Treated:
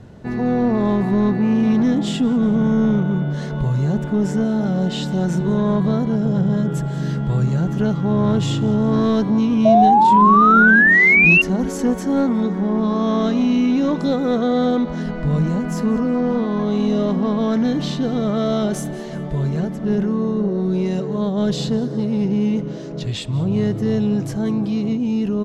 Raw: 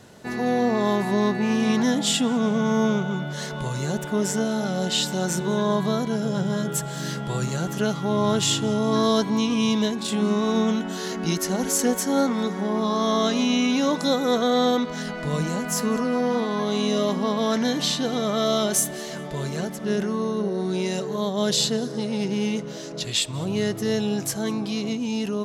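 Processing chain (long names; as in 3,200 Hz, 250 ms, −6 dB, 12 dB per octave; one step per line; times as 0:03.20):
RIAA equalisation playback
on a send: echo with shifted repeats 184 ms, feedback 50%, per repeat +89 Hz, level −22 dB
on the sum: soft clipping −9.5 dBFS, distortion −20 dB
sound drawn into the spectrogram rise, 0:09.65–0:11.42, 640–2,800 Hz −12 dBFS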